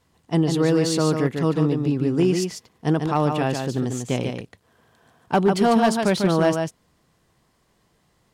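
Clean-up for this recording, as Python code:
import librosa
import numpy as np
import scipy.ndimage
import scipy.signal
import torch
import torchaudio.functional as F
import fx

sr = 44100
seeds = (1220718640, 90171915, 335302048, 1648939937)

y = fx.fix_declip(x, sr, threshold_db=-11.0)
y = fx.fix_echo_inverse(y, sr, delay_ms=146, level_db=-5.5)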